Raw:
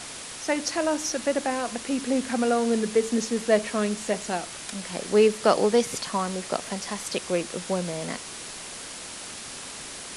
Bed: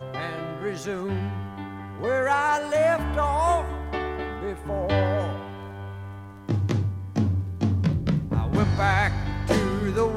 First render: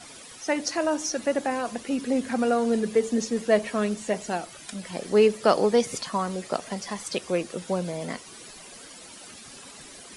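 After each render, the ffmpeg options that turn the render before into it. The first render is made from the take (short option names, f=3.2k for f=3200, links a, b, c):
-af "afftdn=nr=12:nf=-39"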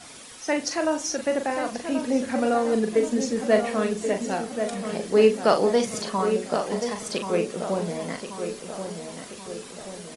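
-filter_complex "[0:a]asplit=2[a][b];[b]adelay=41,volume=-7dB[c];[a][c]amix=inputs=2:normalize=0,asplit=2[d][e];[e]adelay=1082,lowpass=f=2k:p=1,volume=-7.5dB,asplit=2[f][g];[g]adelay=1082,lowpass=f=2k:p=1,volume=0.54,asplit=2[h][i];[i]adelay=1082,lowpass=f=2k:p=1,volume=0.54,asplit=2[j][k];[k]adelay=1082,lowpass=f=2k:p=1,volume=0.54,asplit=2[l][m];[m]adelay=1082,lowpass=f=2k:p=1,volume=0.54,asplit=2[n][o];[o]adelay=1082,lowpass=f=2k:p=1,volume=0.54,asplit=2[p][q];[q]adelay=1082,lowpass=f=2k:p=1,volume=0.54[r];[f][h][j][l][n][p][r]amix=inputs=7:normalize=0[s];[d][s]amix=inputs=2:normalize=0"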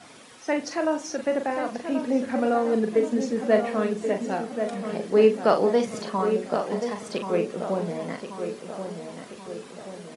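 -af "highpass=110,highshelf=f=3.9k:g=-11.5"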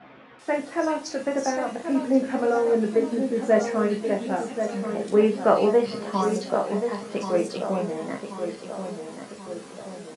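-filter_complex "[0:a]asplit=2[a][b];[b]adelay=15,volume=-4dB[c];[a][c]amix=inputs=2:normalize=0,acrossover=split=2800[d][e];[e]adelay=390[f];[d][f]amix=inputs=2:normalize=0"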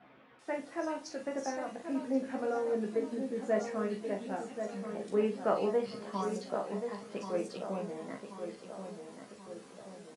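-af "volume=-11dB"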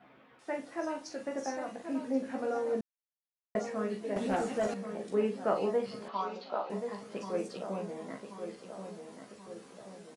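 -filter_complex "[0:a]asettb=1/sr,asplit=3[a][b][c];[a]atrim=end=4.164[d];[b]atrim=start=4.16:end=4.74,asetpts=PTS-STARTPTS,afade=t=in:d=0.004:c=qsin,afade=t=out:st=0.576:d=0.004:c=qsin,aeval=exprs='0.0562*sin(PI/2*1.78*val(0)/0.0562)':c=same[e];[c]atrim=start=4.736[f];[d][e]acrossfade=d=0.004:c1=hsin:c2=qsin[g];[g][f]acrossfade=d=0.004:c1=qsin:c2=hsin,asettb=1/sr,asplit=3[h][i][j];[h]atrim=end=6.084[k];[i]atrim=start=6.08:end=6.7,asetpts=PTS-STARTPTS,afade=t=in:d=0.004:c=qsin,afade=t=out:st=0.616:d=0.004:c=qsin,highpass=350,equalizer=f=430:t=q:w=4:g=-5,equalizer=f=870:t=q:w=4:g=6,equalizer=f=1.3k:t=q:w=4:g=5,equalizer=f=1.8k:t=q:w=4:g=-7,equalizer=f=2.6k:t=q:w=4:g=4,equalizer=f=3.9k:t=q:w=4:g=5,lowpass=f=4.4k:w=0.5412,lowpass=f=4.4k:w=1.3066[l];[j]atrim=start=6.696[m];[k][l]acrossfade=d=0.004:c1=hsin:c2=qsin[n];[n][m]acrossfade=d=0.004:c1=qsin:c2=hsin,asplit=3[o][p][q];[o]atrim=end=2.81,asetpts=PTS-STARTPTS,afade=t=out:st=2.806:d=0.004:c=hsin[r];[p]atrim=start=2.81:end=3.55,asetpts=PTS-STARTPTS,volume=0[s];[q]atrim=start=3.55,asetpts=PTS-STARTPTS,afade=t=in:d=0.004:c=hsin[t];[r][s][t]concat=n=3:v=0:a=1"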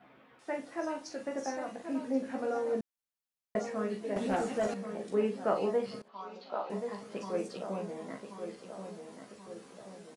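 -filter_complex "[0:a]asplit=2[a][b];[a]atrim=end=6.02,asetpts=PTS-STARTPTS,afade=t=out:st=6.016:d=0.004:c=hsin:silence=0.0668344[c];[b]atrim=start=6.02,asetpts=PTS-STARTPTS,afade=t=in:d=0.66:silence=0.0668344[d];[c][d]concat=n=2:v=0:a=1"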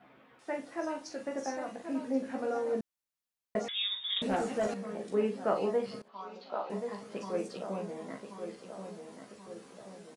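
-filter_complex "[0:a]asettb=1/sr,asplit=3[a][b][c];[a]atrim=end=3.684[d];[b]atrim=start=3.68:end=4.22,asetpts=PTS-STARTPTS,afade=t=in:d=0.004:c=qsin,afade=t=out:st=0.536:d=0.004:c=qsin,lowpass=f=3.3k:t=q:w=0.5098,lowpass=f=3.3k:t=q:w=0.6013,lowpass=f=3.3k:t=q:w=0.9,lowpass=f=3.3k:t=q:w=2.563,afreqshift=-3900[e];[c]atrim=start=4.216[f];[d][e]acrossfade=d=0.004:c1=hsin:c2=qsin[g];[g][f]acrossfade=d=0.004:c1=qsin:c2=hsin"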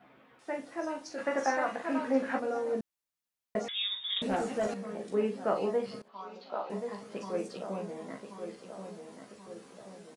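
-filter_complex "[0:a]asplit=3[a][b][c];[a]afade=t=out:st=1.17:d=0.02[d];[b]equalizer=f=1.4k:w=0.55:g=13.5,afade=t=in:st=1.17:d=0.02,afade=t=out:st=2.38:d=0.02[e];[c]afade=t=in:st=2.38:d=0.02[f];[d][e][f]amix=inputs=3:normalize=0"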